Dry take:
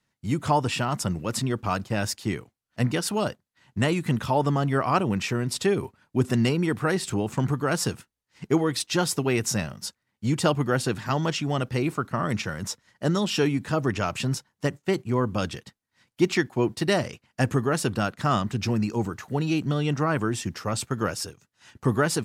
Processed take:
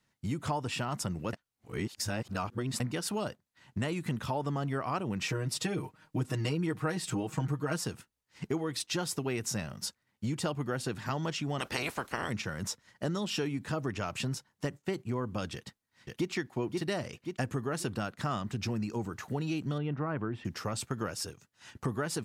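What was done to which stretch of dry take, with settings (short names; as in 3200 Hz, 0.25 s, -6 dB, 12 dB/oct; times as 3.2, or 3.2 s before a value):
1.33–2.8 reverse
5.21–7.81 comb 6.4 ms, depth 100%
11.58–12.28 spectral limiter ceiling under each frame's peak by 25 dB
15.54–16.3 echo throw 0.53 s, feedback 30%, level -4.5 dB
19.78–20.45 air absorption 460 m
whole clip: compressor 3:1, threshold -33 dBFS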